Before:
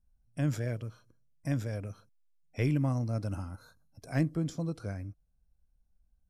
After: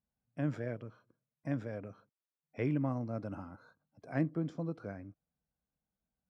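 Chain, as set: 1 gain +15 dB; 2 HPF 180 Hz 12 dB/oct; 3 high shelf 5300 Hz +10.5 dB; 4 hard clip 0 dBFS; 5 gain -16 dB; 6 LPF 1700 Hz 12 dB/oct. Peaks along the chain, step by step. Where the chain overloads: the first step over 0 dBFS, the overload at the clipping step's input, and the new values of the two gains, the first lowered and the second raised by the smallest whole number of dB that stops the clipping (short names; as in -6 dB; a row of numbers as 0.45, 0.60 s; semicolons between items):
-2.0, -3.0, -2.0, -2.0, -18.0, -19.5 dBFS; no overload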